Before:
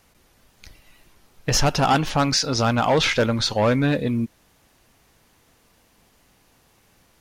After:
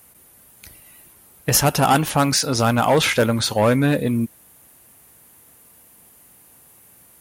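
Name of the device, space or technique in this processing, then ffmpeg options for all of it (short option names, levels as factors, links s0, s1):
budget condenser microphone: -af "highpass=67,highshelf=f=7600:t=q:w=1.5:g=13,volume=1.33"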